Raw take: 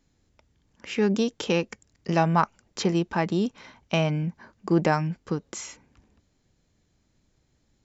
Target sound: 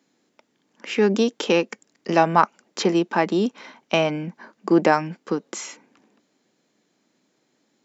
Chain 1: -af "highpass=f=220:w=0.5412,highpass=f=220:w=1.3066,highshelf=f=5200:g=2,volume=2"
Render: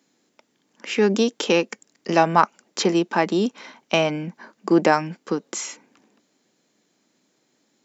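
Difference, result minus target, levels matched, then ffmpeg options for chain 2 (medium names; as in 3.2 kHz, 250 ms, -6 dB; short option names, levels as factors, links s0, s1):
8 kHz band +4.0 dB
-af "highpass=f=220:w=0.5412,highpass=f=220:w=1.3066,highshelf=f=5200:g=-4.5,volume=2"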